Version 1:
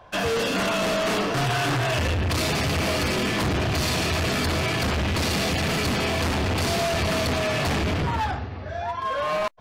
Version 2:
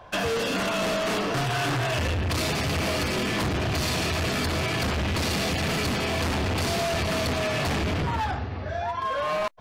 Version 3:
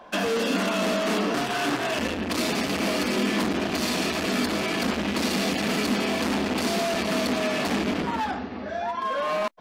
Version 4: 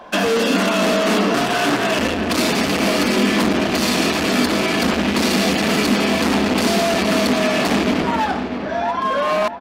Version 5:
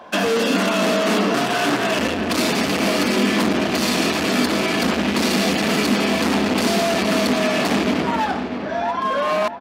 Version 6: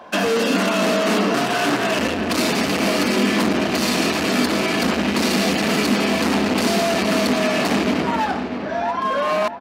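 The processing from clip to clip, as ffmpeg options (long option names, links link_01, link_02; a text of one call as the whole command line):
ffmpeg -i in.wav -af "acompressor=threshold=-27dB:ratio=6,volume=2dB" out.wav
ffmpeg -i in.wav -af "lowshelf=frequency=160:width_type=q:width=3:gain=-11" out.wav
ffmpeg -i in.wav -filter_complex "[0:a]asplit=2[link_01][link_02];[link_02]adelay=646,lowpass=frequency=2600:poles=1,volume=-11dB,asplit=2[link_03][link_04];[link_04]adelay=646,lowpass=frequency=2600:poles=1,volume=0.52,asplit=2[link_05][link_06];[link_06]adelay=646,lowpass=frequency=2600:poles=1,volume=0.52,asplit=2[link_07][link_08];[link_08]adelay=646,lowpass=frequency=2600:poles=1,volume=0.52,asplit=2[link_09][link_10];[link_10]adelay=646,lowpass=frequency=2600:poles=1,volume=0.52,asplit=2[link_11][link_12];[link_12]adelay=646,lowpass=frequency=2600:poles=1,volume=0.52[link_13];[link_01][link_03][link_05][link_07][link_09][link_11][link_13]amix=inputs=7:normalize=0,volume=7.5dB" out.wav
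ffmpeg -i in.wav -af "highpass=74,volume=-1.5dB" out.wav
ffmpeg -i in.wav -af "bandreject=frequency=3400:width=25" out.wav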